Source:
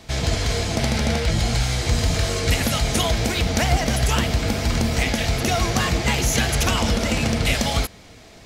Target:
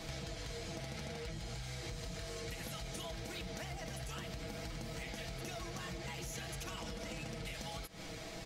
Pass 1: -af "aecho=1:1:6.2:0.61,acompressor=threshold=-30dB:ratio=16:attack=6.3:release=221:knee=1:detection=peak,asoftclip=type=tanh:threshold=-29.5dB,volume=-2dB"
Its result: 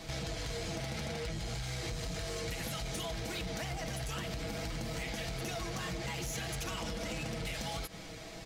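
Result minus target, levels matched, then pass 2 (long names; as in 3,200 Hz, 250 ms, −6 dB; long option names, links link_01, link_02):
downward compressor: peak gain reduction −7 dB
-af "aecho=1:1:6.2:0.61,acompressor=threshold=-37.5dB:ratio=16:attack=6.3:release=221:knee=1:detection=peak,asoftclip=type=tanh:threshold=-29.5dB,volume=-2dB"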